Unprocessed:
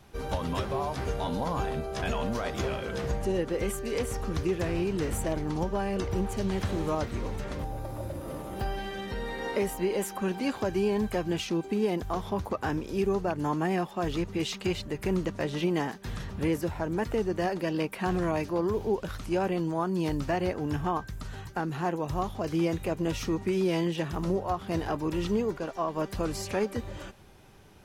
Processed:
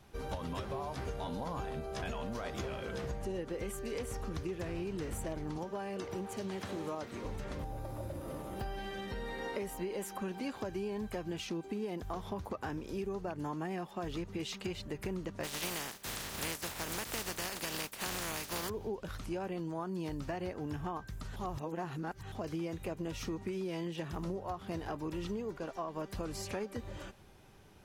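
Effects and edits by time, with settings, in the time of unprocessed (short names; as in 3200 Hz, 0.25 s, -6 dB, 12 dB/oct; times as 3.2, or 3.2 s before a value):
5.58–7.25 Bessel high-pass 210 Hz
15.43–18.68 spectral contrast lowered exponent 0.31
21.36–22.32 reverse
whole clip: compressor 4:1, threshold -31 dBFS; gain -4.5 dB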